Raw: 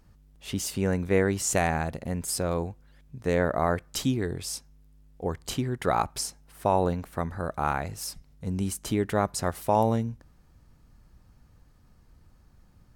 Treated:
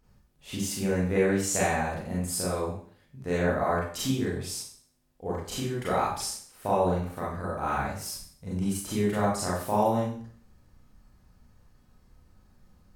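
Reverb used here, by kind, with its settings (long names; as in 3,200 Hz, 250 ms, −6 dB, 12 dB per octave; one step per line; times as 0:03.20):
four-comb reverb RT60 0.5 s, combs from 30 ms, DRR −7 dB
level −8 dB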